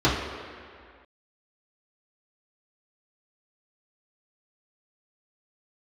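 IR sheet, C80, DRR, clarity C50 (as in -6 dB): 4.0 dB, -9.0 dB, 2.0 dB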